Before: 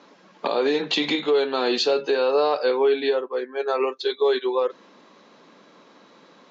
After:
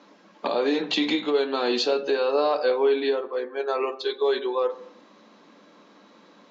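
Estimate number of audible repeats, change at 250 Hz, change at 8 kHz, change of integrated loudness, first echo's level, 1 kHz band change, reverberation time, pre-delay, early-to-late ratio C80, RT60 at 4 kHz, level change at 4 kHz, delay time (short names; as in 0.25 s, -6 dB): none, +0.5 dB, n/a, -2.0 dB, none, -1.5 dB, 0.70 s, 3 ms, 18.5 dB, 0.70 s, -2.5 dB, none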